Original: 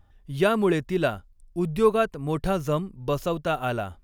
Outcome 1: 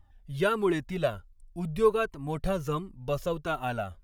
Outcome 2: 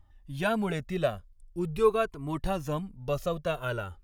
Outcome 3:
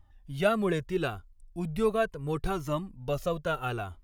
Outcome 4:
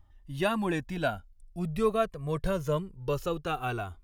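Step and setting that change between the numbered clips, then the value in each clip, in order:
Shepard-style flanger, rate: 1.4 Hz, 0.44 Hz, 0.75 Hz, 0.23 Hz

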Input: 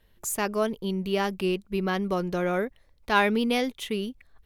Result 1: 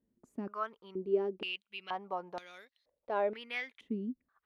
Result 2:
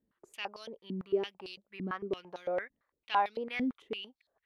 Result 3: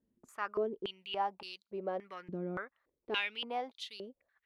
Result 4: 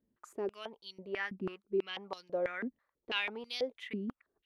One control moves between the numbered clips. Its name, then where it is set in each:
step-sequenced band-pass, rate: 2.1 Hz, 8.9 Hz, 3.5 Hz, 6.1 Hz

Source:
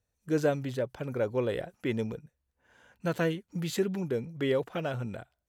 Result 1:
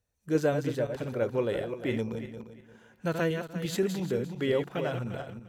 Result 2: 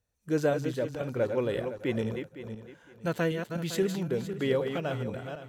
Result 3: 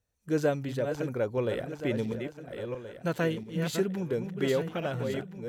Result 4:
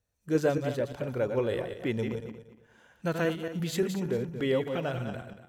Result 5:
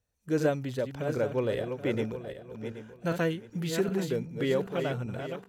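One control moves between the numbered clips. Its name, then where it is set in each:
backward echo that repeats, time: 174 ms, 255 ms, 687 ms, 116 ms, 389 ms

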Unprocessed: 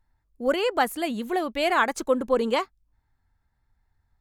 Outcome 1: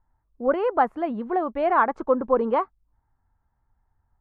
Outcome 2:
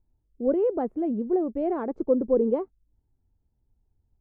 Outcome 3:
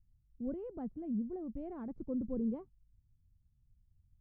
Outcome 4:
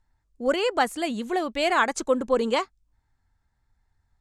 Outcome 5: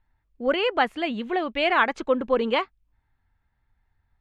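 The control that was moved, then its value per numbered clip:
resonant low-pass, frequency: 1.1 kHz, 410 Hz, 150 Hz, 7.8 kHz, 2.9 kHz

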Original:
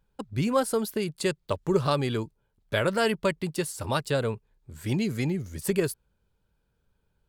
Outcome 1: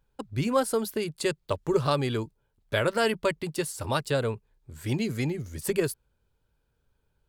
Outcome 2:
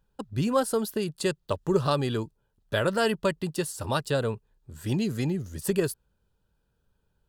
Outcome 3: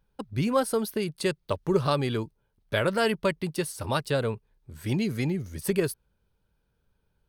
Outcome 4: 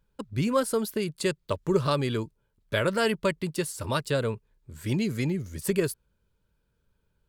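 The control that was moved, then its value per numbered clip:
band-stop, frequency: 190 Hz, 2.2 kHz, 7.3 kHz, 770 Hz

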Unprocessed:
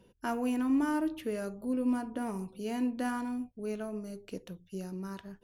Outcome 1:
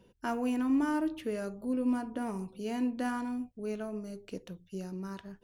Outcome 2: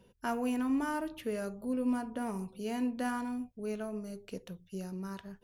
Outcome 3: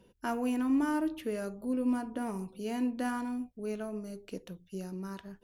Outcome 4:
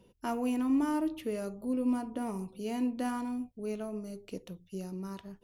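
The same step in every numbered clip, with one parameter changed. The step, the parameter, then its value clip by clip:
peaking EQ, frequency: 12 kHz, 310 Hz, 110 Hz, 1.6 kHz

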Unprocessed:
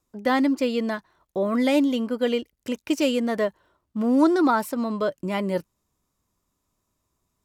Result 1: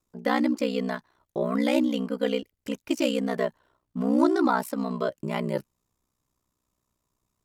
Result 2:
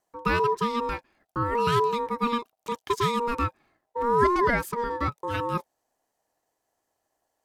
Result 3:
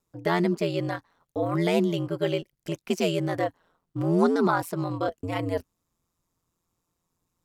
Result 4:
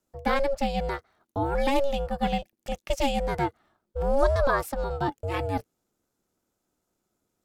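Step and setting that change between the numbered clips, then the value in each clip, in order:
ring modulator, frequency: 31 Hz, 710 Hz, 86 Hz, 280 Hz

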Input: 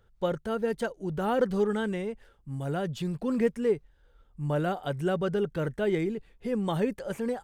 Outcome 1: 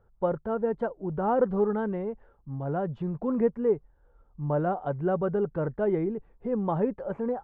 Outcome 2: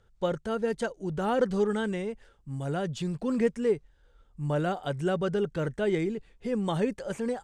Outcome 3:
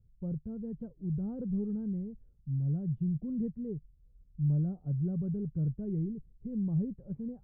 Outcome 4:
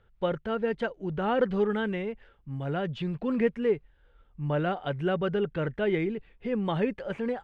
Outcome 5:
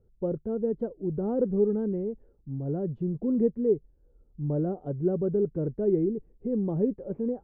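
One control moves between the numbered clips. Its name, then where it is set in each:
resonant low-pass, frequency: 1 kHz, 7.8 kHz, 150 Hz, 2.7 kHz, 380 Hz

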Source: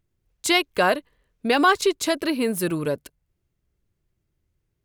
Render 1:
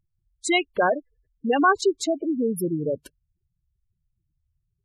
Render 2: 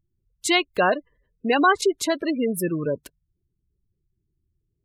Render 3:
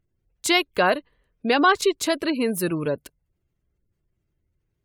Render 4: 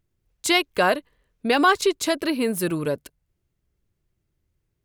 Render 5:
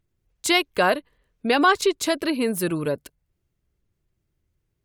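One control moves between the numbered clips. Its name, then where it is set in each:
spectral gate, under each frame's peak: -10 dB, -20 dB, -35 dB, -60 dB, -45 dB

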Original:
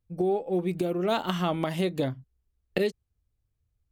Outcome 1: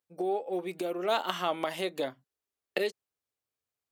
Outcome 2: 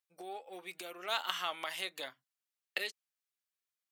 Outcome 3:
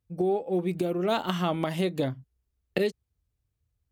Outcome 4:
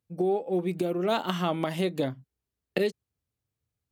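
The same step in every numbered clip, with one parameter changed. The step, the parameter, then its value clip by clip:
high-pass, cutoff frequency: 470 Hz, 1.4 kHz, 41 Hz, 140 Hz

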